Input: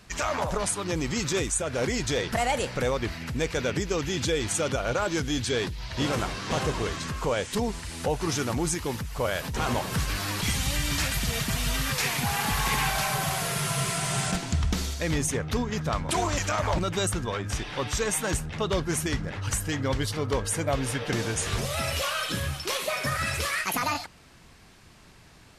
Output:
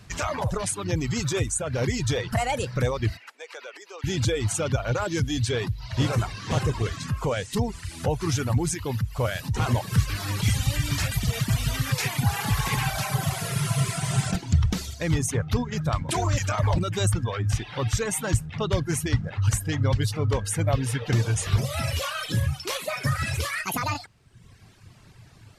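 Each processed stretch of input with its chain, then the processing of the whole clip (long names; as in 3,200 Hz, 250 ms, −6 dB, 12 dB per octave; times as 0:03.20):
0:03.17–0:04.04: high-shelf EQ 4,400 Hz −9.5 dB + downward compressor 12 to 1, threshold −28 dBFS + Bessel high-pass filter 690 Hz, order 6
whole clip: reverb reduction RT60 0.97 s; parametric band 110 Hz +13.5 dB 0.86 octaves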